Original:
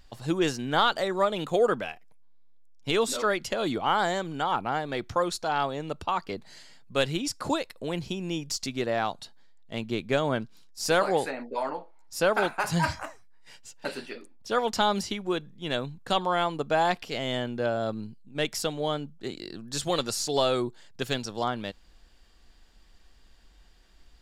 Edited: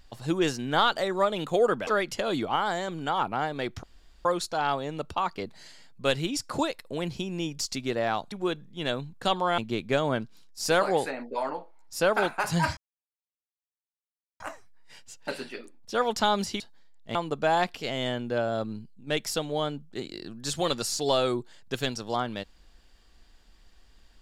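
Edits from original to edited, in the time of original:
0:01.87–0:03.20: remove
0:03.89–0:04.21: clip gain −3 dB
0:05.16: splice in room tone 0.42 s
0:09.23–0:09.78: swap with 0:15.17–0:16.43
0:12.97: splice in silence 1.63 s

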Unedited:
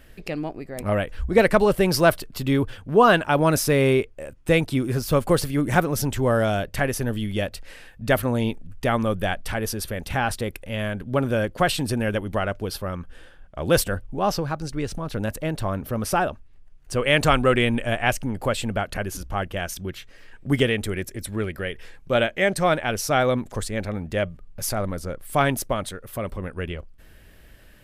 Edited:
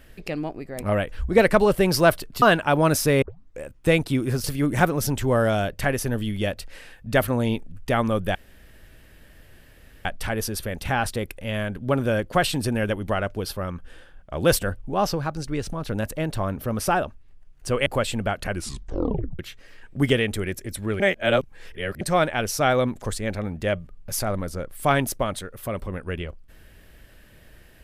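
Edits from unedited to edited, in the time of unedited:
0:02.42–0:03.04: remove
0:03.84: tape start 0.39 s
0:05.06–0:05.39: remove
0:09.30: splice in room tone 1.70 s
0:17.11–0:18.36: remove
0:19.00: tape stop 0.89 s
0:21.50–0:22.51: reverse

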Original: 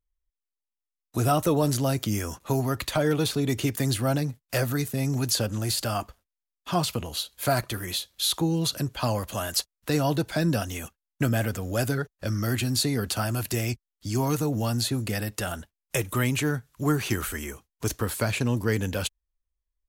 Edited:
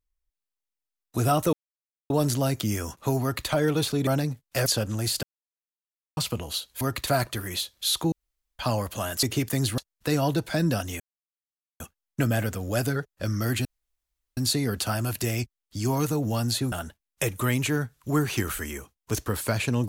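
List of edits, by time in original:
0:01.53: splice in silence 0.57 s
0:02.65–0:02.91: duplicate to 0:07.44
0:03.50–0:04.05: move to 0:09.60
0:04.64–0:05.29: remove
0:05.86–0:06.80: silence
0:08.49–0:08.96: fill with room tone
0:10.82: splice in silence 0.80 s
0:12.67: splice in room tone 0.72 s
0:15.02–0:15.45: remove

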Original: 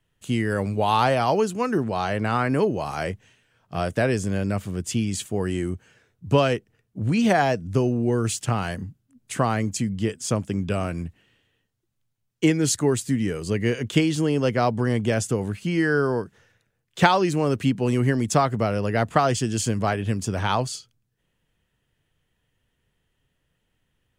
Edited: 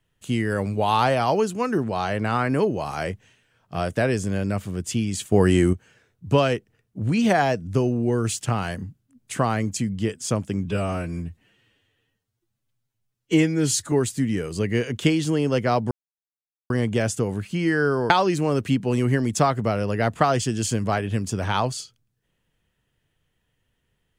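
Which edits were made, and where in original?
0:05.32–0:05.73: clip gain +8.5 dB
0:10.65–0:12.83: time-stretch 1.5×
0:14.82: splice in silence 0.79 s
0:16.22–0:17.05: remove

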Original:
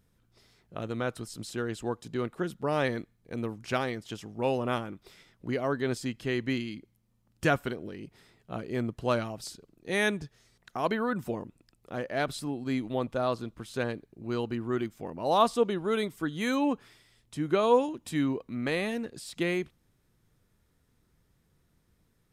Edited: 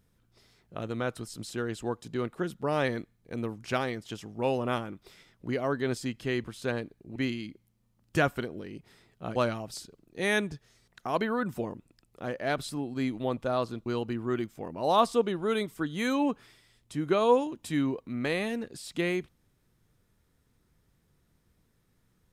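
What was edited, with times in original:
0:08.64–0:09.06: remove
0:13.56–0:14.28: move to 0:06.44

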